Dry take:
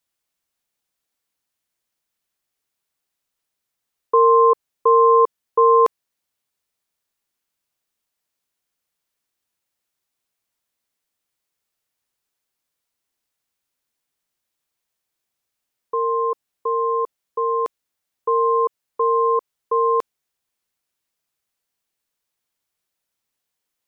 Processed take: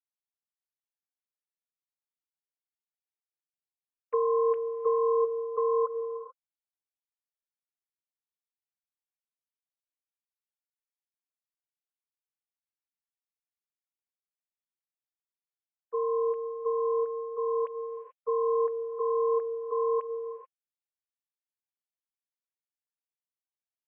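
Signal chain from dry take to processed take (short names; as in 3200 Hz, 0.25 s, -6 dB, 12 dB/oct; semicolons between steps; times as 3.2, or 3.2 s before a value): sine-wave speech; compressor 4:1, threshold -17 dBFS, peak gain reduction 6 dB; non-linear reverb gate 0.46 s rising, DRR 9.5 dB; gain -7.5 dB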